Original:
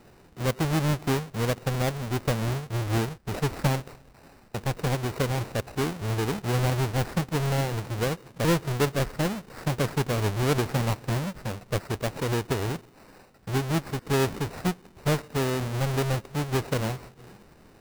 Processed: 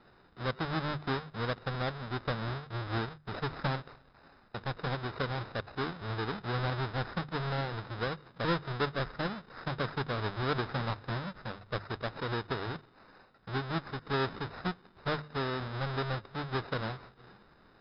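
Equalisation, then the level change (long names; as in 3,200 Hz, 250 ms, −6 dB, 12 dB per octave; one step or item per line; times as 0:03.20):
Chebyshev low-pass with heavy ripple 5,200 Hz, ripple 9 dB
mains-hum notches 50/100/150 Hz
0.0 dB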